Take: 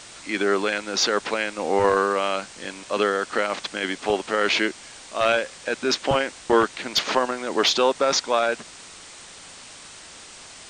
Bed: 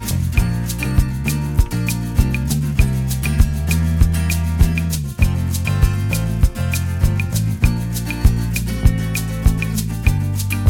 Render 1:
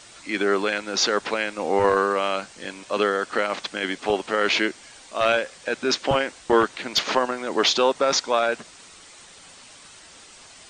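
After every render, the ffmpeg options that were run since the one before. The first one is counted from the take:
-af "afftdn=nr=6:nf=-44"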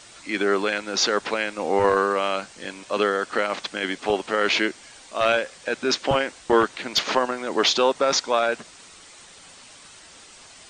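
-af anull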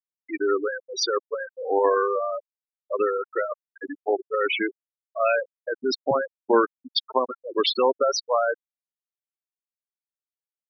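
-af "highpass=160,afftfilt=real='re*gte(hypot(re,im),0.251)':imag='im*gte(hypot(re,im),0.251)':win_size=1024:overlap=0.75"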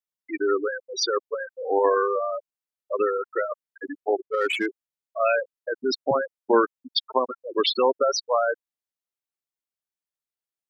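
-filter_complex "[0:a]asettb=1/sr,asplit=3[s0][s1][s2];[s0]atrim=end=4.204[s3];[s1]atrim=start=4.2:end=4.66,asetpts=PTS-STARTPTS,afade=t=in:d=0.004:c=qsin,afade=t=out:st=0.456:d=0.004:c=qsin,adynamicsmooth=sensitivity=2.5:basefreq=2800[s4];[s2]atrim=start=4.656[s5];[s3][s4]acrossfade=d=0.004:c1=hsin:c2=qsin[s6];[s6][s5]acrossfade=d=0.004:c1=qsin:c2=hsin"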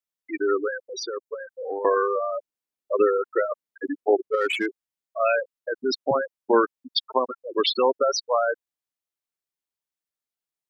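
-filter_complex "[0:a]asettb=1/sr,asplit=3[s0][s1][s2];[s0]atrim=end=0.894[s3];[s1]atrim=start=0.89:end=1.85,asetpts=PTS-STARTPTS,afade=t=in:d=0.004:c=qsin,afade=t=out:st=0.956:d=0.004:c=qsin,acrossover=split=530|5000[s4][s5][s6];[s4]acompressor=threshold=0.0282:ratio=4[s7];[s5]acompressor=threshold=0.0126:ratio=4[s8];[s6]acompressor=threshold=0.0112:ratio=4[s9];[s7][s8][s9]amix=inputs=3:normalize=0[s10];[s2]atrim=start=1.846[s11];[s3][s10]acrossfade=d=0.004:c1=hsin:c2=qsin[s12];[s12][s11]acrossfade=d=0.004:c1=qsin:c2=hsin,asplit=3[s13][s14][s15];[s13]afade=t=out:st=2.35:d=0.02[s16];[s14]equalizer=f=290:w=0.77:g=6,afade=t=in:st=2.35:d=0.02,afade=t=out:st=4.35:d=0.02[s17];[s15]afade=t=in:st=4.35:d=0.02[s18];[s16][s17][s18]amix=inputs=3:normalize=0"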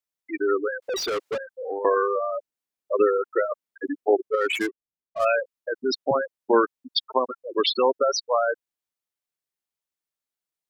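-filter_complex "[0:a]asettb=1/sr,asplit=3[s0][s1][s2];[s0]atrim=end=0.824[s3];[s1]atrim=start=0.82:end=1.38,asetpts=PTS-STARTPTS,afade=t=in:d=0.004:c=qsin,afade=t=out:st=0.556:d=0.004:c=qsin,asplit=2[s4][s5];[s5]highpass=f=720:p=1,volume=31.6,asoftclip=type=tanh:threshold=0.1[s6];[s4][s6]amix=inputs=2:normalize=0,lowpass=f=3800:p=1,volume=0.501[s7];[s2]atrim=start=1.376[s8];[s3][s7]acrossfade=d=0.004:c1=hsin:c2=qsin[s9];[s9][s8]acrossfade=d=0.004:c1=qsin:c2=hsin,asettb=1/sr,asplit=3[s10][s11][s12];[s10]atrim=end=4.554[s13];[s11]atrim=start=4.55:end=5.25,asetpts=PTS-STARTPTS,afade=t=in:d=0.004:c=qsin,afade=t=out:st=0.696:d=0.004:c=qsin,adynamicsmooth=sensitivity=7.5:basefreq=580[s14];[s12]atrim=start=5.246[s15];[s13][s14]acrossfade=d=0.004:c1=hsin:c2=qsin[s16];[s16][s15]acrossfade=d=0.004:c1=qsin:c2=hsin"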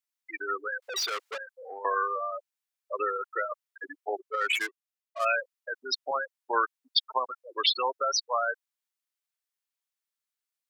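-af "highpass=1000"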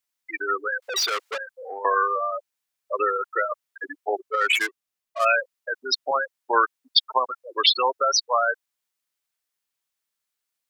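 -af "volume=2.11"

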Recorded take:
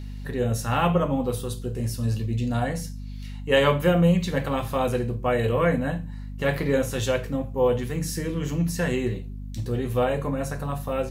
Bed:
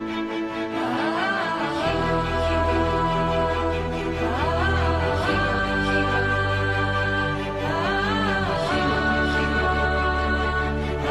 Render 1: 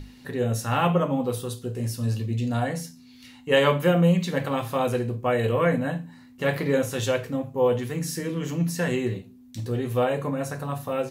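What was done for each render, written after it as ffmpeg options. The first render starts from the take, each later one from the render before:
-af "bandreject=f=50:t=h:w=6,bandreject=f=100:t=h:w=6,bandreject=f=150:t=h:w=6,bandreject=f=200:t=h:w=6"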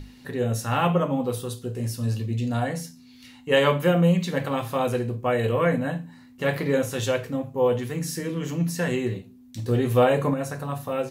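-filter_complex "[0:a]asettb=1/sr,asplit=3[s0][s1][s2];[s0]atrim=end=9.684[s3];[s1]atrim=start=9.68:end=10.34,asetpts=PTS-STARTPTS,afade=t=in:d=0.004:c=qsin,afade=t=out:st=0.656:d=0.004:c=qsin,acontrast=24[s4];[s2]atrim=start=10.336[s5];[s3][s4]acrossfade=d=0.004:c1=hsin:c2=qsin[s6];[s6][s5]acrossfade=d=0.004:c1=qsin:c2=hsin"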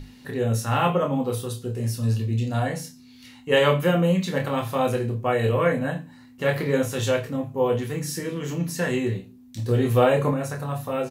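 -filter_complex "[0:a]asplit=2[s0][s1];[s1]adelay=27,volume=0.501[s2];[s0][s2]amix=inputs=2:normalize=0"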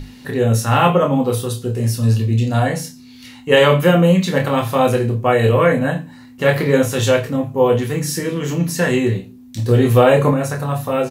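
-af "volume=2.51,alimiter=limit=0.891:level=0:latency=1"

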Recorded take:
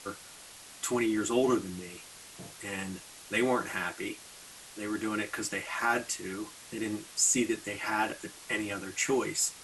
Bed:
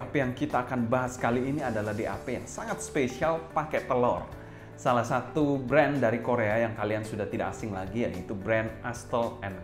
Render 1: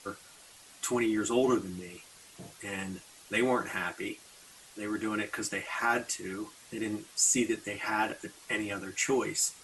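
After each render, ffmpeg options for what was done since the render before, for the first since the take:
-af "afftdn=nr=6:nf=-50"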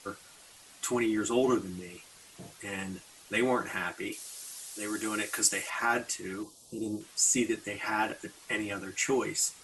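-filter_complex "[0:a]asettb=1/sr,asplit=3[s0][s1][s2];[s0]atrim=end=4.124[s3];[s1]atrim=start=4.12:end=5.7,asetpts=PTS-STARTPTS,afade=t=in:d=0.004:c=qsin,afade=t=out:st=1.576:d=0.004:c=qsin,bass=f=250:g=-5,treble=f=4000:g=13[s4];[s2]atrim=start=5.696[s5];[s3][s4]acrossfade=d=0.004:c1=hsin:c2=qsin[s6];[s6][s5]acrossfade=d=0.004:c1=qsin:c2=hsin,asettb=1/sr,asplit=3[s7][s8][s9];[s7]atrim=end=6.434[s10];[s8]atrim=start=6.43:end=7.01,asetpts=PTS-STARTPTS,afade=t=in:d=0.004:c=qsin,afade=t=out:st=0.576:d=0.004:c=qsin,asuperstop=centerf=1800:order=4:qfactor=0.54[s11];[s9]atrim=start=7.006[s12];[s10][s11]acrossfade=d=0.004:c1=hsin:c2=qsin[s13];[s13][s12]acrossfade=d=0.004:c1=qsin:c2=hsin"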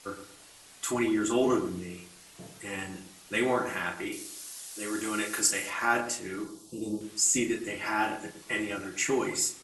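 -filter_complex "[0:a]asplit=2[s0][s1];[s1]adelay=34,volume=0.501[s2];[s0][s2]amix=inputs=2:normalize=0,asplit=2[s3][s4];[s4]adelay=112,lowpass=f=950:p=1,volume=0.398,asplit=2[s5][s6];[s6]adelay=112,lowpass=f=950:p=1,volume=0.31,asplit=2[s7][s8];[s8]adelay=112,lowpass=f=950:p=1,volume=0.31,asplit=2[s9][s10];[s10]adelay=112,lowpass=f=950:p=1,volume=0.31[s11];[s5][s7][s9][s11]amix=inputs=4:normalize=0[s12];[s3][s12]amix=inputs=2:normalize=0"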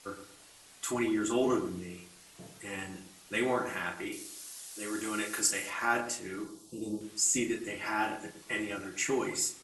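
-af "volume=0.708"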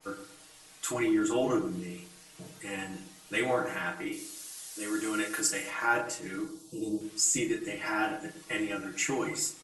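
-af "aecho=1:1:6.4:0.75,adynamicequalizer=threshold=0.00891:dfrequency=2000:dqfactor=0.7:tfrequency=2000:tqfactor=0.7:attack=5:release=100:ratio=0.375:range=2:mode=cutabove:tftype=highshelf"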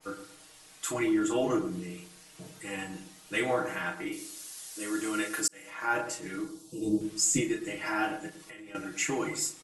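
-filter_complex "[0:a]asettb=1/sr,asplit=3[s0][s1][s2];[s0]atrim=end=6.844[s3];[s1]atrim=start=6.84:end=7.41,asetpts=PTS-STARTPTS,afade=t=in:d=0.004:c=qsin,afade=t=out:st=0.566:d=0.004:c=qsin,lowshelf=f=360:g=9[s4];[s2]atrim=start=7.406[s5];[s3][s4]acrossfade=d=0.004:c1=hsin:c2=qsin[s6];[s6][s5]acrossfade=d=0.004:c1=qsin:c2=hsin,asettb=1/sr,asplit=3[s7][s8][s9];[s7]atrim=end=8.294[s10];[s8]atrim=start=8.29:end=8.75,asetpts=PTS-STARTPTS,afade=t=in:d=0.004:c=qsin,afade=t=out:st=0.456:d=0.004:c=qsin,acompressor=threshold=0.00708:ratio=16:attack=3.2:release=140:knee=1:detection=peak[s11];[s9]atrim=start=8.746[s12];[s10][s11]acrossfade=d=0.004:c1=hsin:c2=qsin[s13];[s13][s12]acrossfade=d=0.004:c1=qsin:c2=hsin,asplit=2[s14][s15];[s14]atrim=end=5.48,asetpts=PTS-STARTPTS,afade=t=out:st=5.476:d=0.004:c=hsin[s16];[s15]atrim=start=5.48,asetpts=PTS-STARTPTS,afade=t=in:d=0.55[s17];[s16][s17]concat=n=2:v=0:a=1"

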